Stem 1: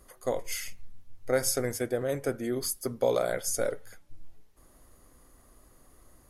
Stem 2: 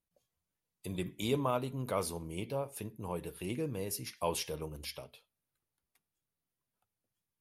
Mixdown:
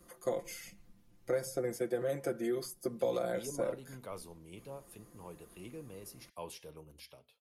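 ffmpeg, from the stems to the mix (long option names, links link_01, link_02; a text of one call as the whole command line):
ffmpeg -i stem1.wav -i stem2.wav -filter_complex "[0:a]equalizer=frequency=220:width_type=o:width=1.3:gain=8,aecho=1:1:5.8:0.88,volume=-5dB[link_01];[1:a]adelay=2150,volume=-10.5dB[link_02];[link_01][link_02]amix=inputs=2:normalize=0,highpass=frequency=68:poles=1,acrossover=split=320|940[link_03][link_04][link_05];[link_03]acompressor=threshold=-44dB:ratio=4[link_06];[link_04]acompressor=threshold=-32dB:ratio=4[link_07];[link_05]acompressor=threshold=-46dB:ratio=4[link_08];[link_06][link_07][link_08]amix=inputs=3:normalize=0" out.wav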